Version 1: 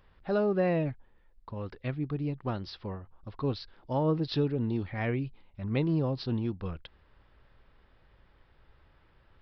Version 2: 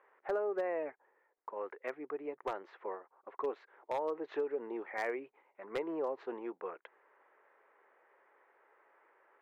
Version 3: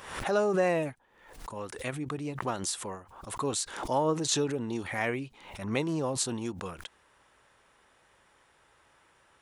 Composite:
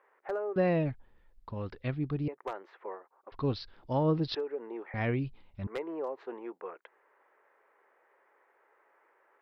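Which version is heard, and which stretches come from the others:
2
0:00.56–0:02.28: punch in from 1
0:03.32–0:04.35: punch in from 1
0:04.94–0:05.67: punch in from 1
not used: 3

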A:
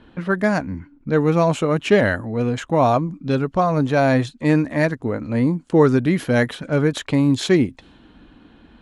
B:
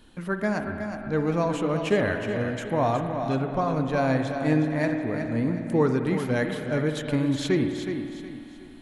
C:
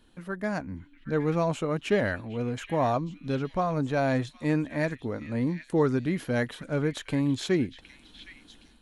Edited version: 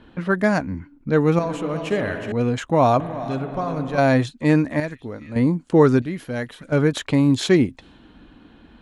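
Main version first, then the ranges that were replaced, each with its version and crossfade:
A
0:01.39–0:02.32: punch in from B
0:03.00–0:03.98: punch in from B
0:04.80–0:05.36: punch in from C
0:06.02–0:06.72: punch in from C

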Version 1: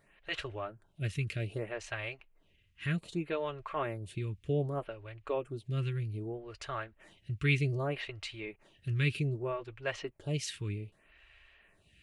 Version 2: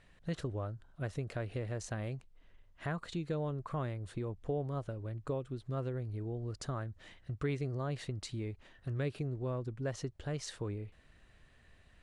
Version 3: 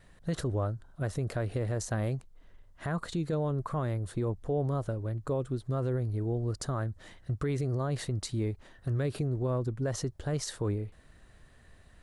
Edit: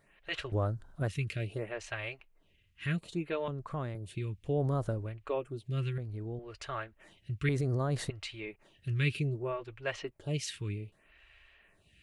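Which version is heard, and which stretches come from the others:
1
0:00.52–0:01.08: punch in from 3
0:03.48–0:03.95: punch in from 2
0:04.52–0:05.08: punch in from 3, crossfade 0.24 s
0:05.98–0:06.39: punch in from 2
0:07.49–0:08.10: punch in from 3

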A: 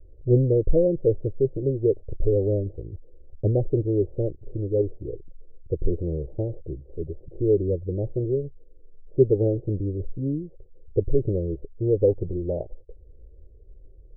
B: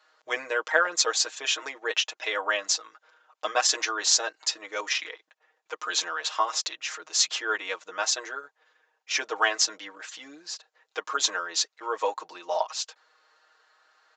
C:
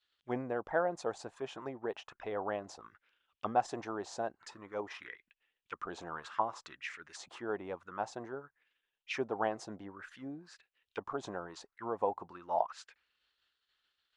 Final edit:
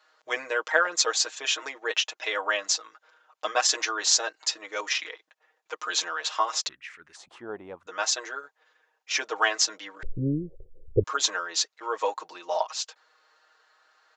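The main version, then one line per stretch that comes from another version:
B
0:06.69–0:07.87: punch in from C
0:10.03–0:11.04: punch in from A

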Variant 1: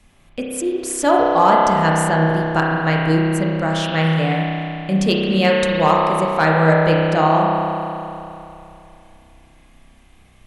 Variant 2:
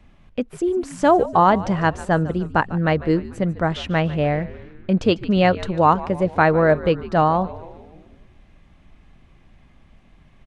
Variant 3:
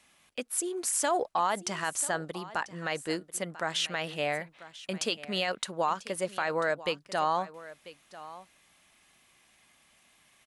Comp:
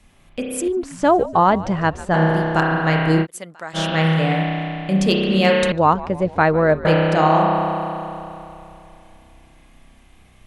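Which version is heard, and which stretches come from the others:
1
0:00.68–0:02.14: punch in from 2
0:03.24–0:03.76: punch in from 3, crossfade 0.06 s
0:05.72–0:06.85: punch in from 2

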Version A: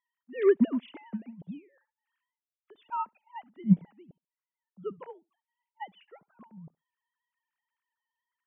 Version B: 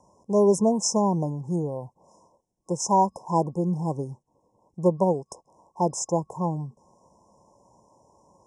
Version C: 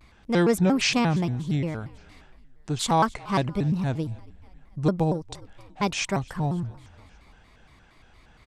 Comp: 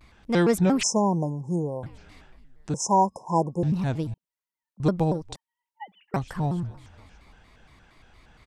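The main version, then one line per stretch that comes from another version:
C
0:00.83–0:01.83: punch in from B
0:02.74–0:03.63: punch in from B
0:04.14–0:04.80: punch in from A
0:05.36–0:06.14: punch in from A

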